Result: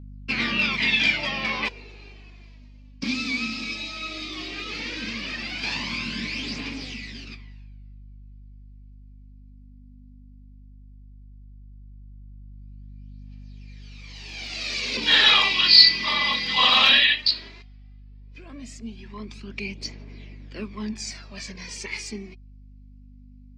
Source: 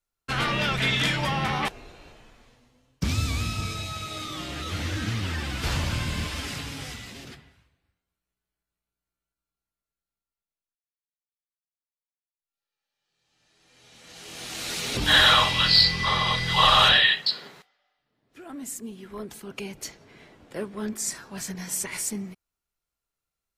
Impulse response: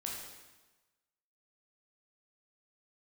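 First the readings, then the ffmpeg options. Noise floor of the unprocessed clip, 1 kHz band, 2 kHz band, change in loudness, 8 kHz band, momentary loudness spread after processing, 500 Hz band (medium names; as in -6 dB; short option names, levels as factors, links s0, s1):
under -85 dBFS, -4.0 dB, +2.5 dB, +2.0 dB, -7.0 dB, 23 LU, -4.5 dB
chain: -af "highpass=f=200:w=0.5412,highpass=f=200:w=1.3066,equalizer=f=230:t=q:w=4:g=8,equalizer=f=540:t=q:w=4:g=-4,equalizer=f=780:t=q:w=4:g=-5,equalizer=f=1400:t=q:w=4:g=-7,equalizer=f=2400:t=q:w=4:g=10,equalizer=f=4700:t=q:w=4:g=8,lowpass=f=5800:w=0.5412,lowpass=f=5800:w=1.3066,aeval=exprs='val(0)+0.00631*(sin(2*PI*50*n/s)+sin(2*PI*2*50*n/s)/2+sin(2*PI*3*50*n/s)/3+sin(2*PI*4*50*n/s)/4+sin(2*PI*5*50*n/s)/5)':c=same,aphaser=in_gain=1:out_gain=1:delay=4:decay=0.52:speed=0.15:type=triangular,volume=0.794"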